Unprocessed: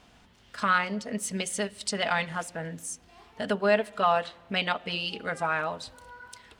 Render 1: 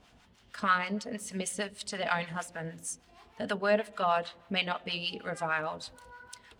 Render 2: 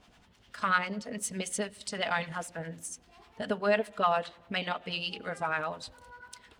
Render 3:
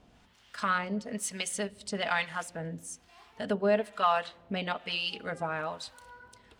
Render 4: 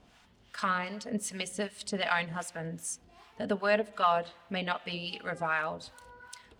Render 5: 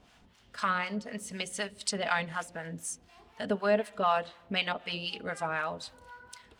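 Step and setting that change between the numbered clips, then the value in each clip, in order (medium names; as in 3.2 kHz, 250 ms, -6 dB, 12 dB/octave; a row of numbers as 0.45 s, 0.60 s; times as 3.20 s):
harmonic tremolo, rate: 6.4 Hz, 10 Hz, 1.1 Hz, 2.6 Hz, 4 Hz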